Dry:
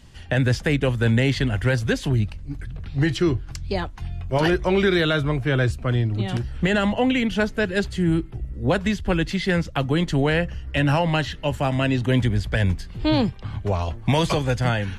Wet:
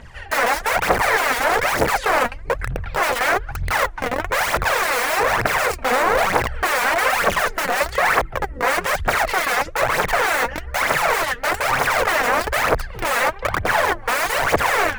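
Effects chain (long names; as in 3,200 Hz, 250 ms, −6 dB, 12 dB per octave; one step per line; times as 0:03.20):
wrap-around overflow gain 24 dB
phase shifter 1.1 Hz, delay 4.3 ms, feedback 67%
flat-topped bell 1,000 Hz +13.5 dB 2.7 octaves
level −1.5 dB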